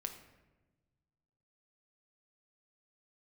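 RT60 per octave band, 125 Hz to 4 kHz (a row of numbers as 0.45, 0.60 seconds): 2.2, 1.7, 1.3, 1.0, 0.95, 0.70 seconds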